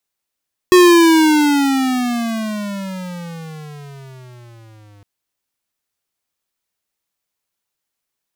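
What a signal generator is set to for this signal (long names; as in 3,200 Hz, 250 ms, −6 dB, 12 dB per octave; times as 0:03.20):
pitch glide with a swell square, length 4.31 s, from 366 Hz, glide −22.5 semitones, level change −38.5 dB, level −6.5 dB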